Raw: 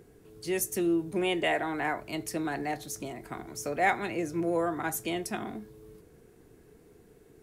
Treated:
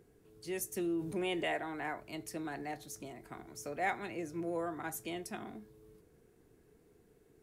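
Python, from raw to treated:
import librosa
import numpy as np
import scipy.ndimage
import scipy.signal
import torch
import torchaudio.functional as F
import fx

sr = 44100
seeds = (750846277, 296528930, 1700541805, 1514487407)

y = fx.env_flatten(x, sr, amount_pct=50, at=(0.77, 1.57))
y = F.gain(torch.from_numpy(y), -8.5).numpy()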